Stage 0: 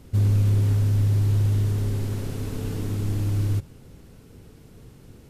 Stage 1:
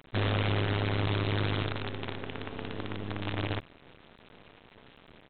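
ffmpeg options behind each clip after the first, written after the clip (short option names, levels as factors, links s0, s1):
-af "highpass=f=470:p=1,aresample=8000,acrusher=bits=6:dc=4:mix=0:aa=0.000001,aresample=44100,volume=1.41"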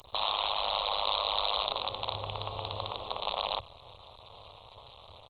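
-af "afftfilt=real='re*lt(hypot(re,im),0.0708)':imag='im*lt(hypot(re,im),0.0708)':win_size=1024:overlap=0.75,firequalizer=gain_entry='entry(110,0);entry(150,-13);entry(260,-22);entry(540,0);entry(1100,4);entry(1600,-26);entry(2500,-7);entry(4400,12);entry(6700,10)':delay=0.05:min_phase=1,volume=2" -ar 48000 -c:a libopus -b:a 24k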